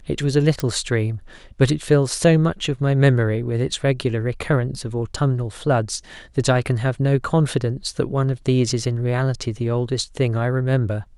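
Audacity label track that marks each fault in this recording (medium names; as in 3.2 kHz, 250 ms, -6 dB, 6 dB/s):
0.600000	0.600000	pop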